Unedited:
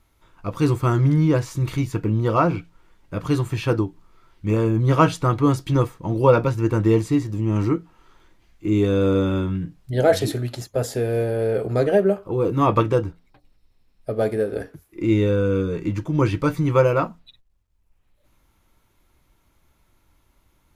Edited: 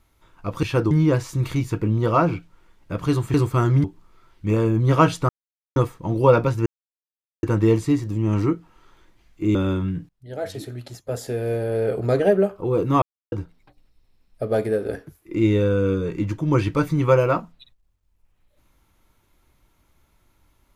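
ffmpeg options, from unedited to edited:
-filter_complex "[0:a]asplit=12[a][b][c][d][e][f][g][h][i][j][k][l];[a]atrim=end=0.632[m];[b]atrim=start=3.558:end=3.842[n];[c]atrim=start=1.128:end=3.562[o];[d]atrim=start=0.628:end=1.132[p];[e]atrim=start=3.838:end=5.29,asetpts=PTS-STARTPTS,afade=t=out:st=1.448:d=0.004:c=hsin[q];[f]atrim=start=5.29:end=5.76,asetpts=PTS-STARTPTS,volume=0[r];[g]atrim=start=5.76:end=6.66,asetpts=PTS-STARTPTS,afade=t=in:d=0.004:c=hsin,afade=t=out:st=0.896:d=0.004:c=hsin,apad=pad_dur=0.77[s];[h]atrim=start=6.66:end=8.782,asetpts=PTS-STARTPTS,afade=t=in:d=0.004:c=hsin[t];[i]atrim=start=9.218:end=9.76,asetpts=PTS-STARTPTS,afade=t=out:st=0.538:d=0.004:c=hsin:silence=0.0668344[u];[j]atrim=start=9.76:end=12.69,asetpts=PTS-STARTPTS,afade=t=in:d=1.9:silence=0.0668344,afade=t=out:st=2.926:d=0.004:c=hsin[v];[k]atrim=start=12.69:end=12.99,asetpts=PTS-STARTPTS,volume=0[w];[l]atrim=start=12.99,asetpts=PTS-STARTPTS,afade=t=in:d=0.004:c=hsin[x];[m][n]acrossfade=d=0.004:c1=hsin:c2=hsin[y];[y][o]acrossfade=d=0.004:c1=hsin:c2=hsin[z];[z][p]acrossfade=d=0.004:c1=hsin:c2=hsin[aa];[q][r][s][t]concat=n=4:v=0:a=1[ab];[aa][ab]acrossfade=d=0.004:c1=hsin:c2=hsin[ac];[u][v][w][x]concat=n=4:v=0:a=1[ad];[ac][ad]acrossfade=d=0.004:c1=hsin:c2=hsin"

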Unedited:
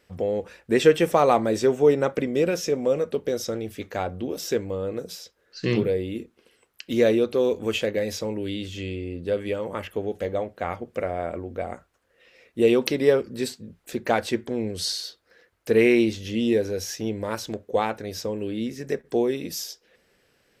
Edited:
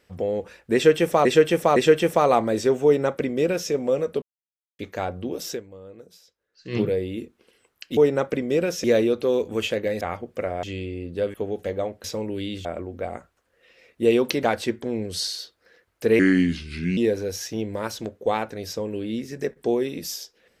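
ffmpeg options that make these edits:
-filter_complex "[0:a]asplit=17[a][b][c][d][e][f][g][h][i][j][k][l][m][n][o][p][q];[a]atrim=end=1.252[r];[b]atrim=start=0.738:end=1.252[s];[c]atrim=start=0.738:end=3.2,asetpts=PTS-STARTPTS,afade=t=out:st=2.458:d=0.004:c=hsin[t];[d]atrim=start=3.2:end=3.77,asetpts=PTS-STARTPTS,volume=0[u];[e]atrim=start=3.77:end=4.88,asetpts=PTS-STARTPTS,afade=t=in:d=0.004:c=hsin,afade=t=out:st=0.73:d=0.38:c=exp:silence=0.199526[v];[f]atrim=start=4.88:end=5.37,asetpts=PTS-STARTPTS,volume=-14dB[w];[g]atrim=start=5.37:end=6.952,asetpts=PTS-STARTPTS,afade=t=in:d=0.38:c=exp:silence=0.199526[x];[h]atrim=start=1.818:end=2.692[y];[i]atrim=start=6.948:end=8.122[z];[j]atrim=start=10.598:end=11.222[aa];[k]atrim=start=8.728:end=9.442[ab];[l]atrim=start=9.898:end=10.602[ac];[m]atrim=start=8.118:end=8.732[ad];[n]atrim=start=11.218:end=13.002[ae];[o]atrim=start=14.078:end=15.844[af];[p]atrim=start=15.84:end=16.45,asetpts=PTS-STARTPTS,asetrate=34398,aresample=44100,atrim=end_sample=34488,asetpts=PTS-STARTPTS[ag];[q]atrim=start=16.446[ah];[r][s]acrossfade=d=0.004:c1=hsin:c2=hsin[ai];[t][u][v][w][x]concat=n=5:v=0:a=1[aj];[ai][aj]acrossfade=d=0.004:c1=hsin:c2=hsin[ak];[ak][y]acrossfade=d=0.004:c1=hsin:c2=hsin[al];[al][z]acrossfade=d=0.004:c1=hsin:c2=hsin[am];[am][aa]acrossfade=d=0.004:c1=hsin:c2=hsin[an];[an][ab]acrossfade=d=0.004:c1=hsin:c2=hsin[ao];[ao][ac]acrossfade=d=0.004:c1=hsin:c2=hsin[ap];[ap][ad]acrossfade=d=0.004:c1=hsin:c2=hsin[aq];[aq][ae]acrossfade=d=0.004:c1=hsin:c2=hsin[ar];[ar][af]acrossfade=d=0.004:c1=hsin:c2=hsin[as];[as][ag]acrossfade=d=0.004:c1=hsin:c2=hsin[at];[at][ah]acrossfade=d=0.004:c1=hsin:c2=hsin"

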